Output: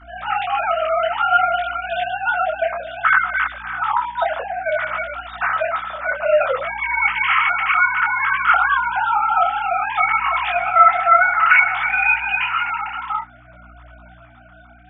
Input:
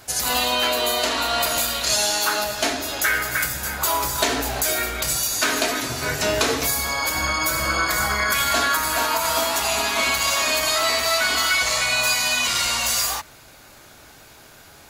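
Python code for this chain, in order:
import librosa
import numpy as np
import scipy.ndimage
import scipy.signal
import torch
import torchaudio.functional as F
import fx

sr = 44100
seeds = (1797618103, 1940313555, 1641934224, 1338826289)

y = fx.sine_speech(x, sr)
y = fx.tilt_shelf(y, sr, db=4.5, hz=790.0)
y = fx.add_hum(y, sr, base_hz=60, snr_db=25)
y = fx.peak_eq(y, sr, hz=1300.0, db=13.0, octaves=0.21)
y = fx.echo_heads(y, sr, ms=62, heads='second and third', feedback_pct=69, wet_db=-19.0, at=(10.29, 12.64), fade=0.02)
y = fx.detune_double(y, sr, cents=20)
y = y * librosa.db_to_amplitude(6.0)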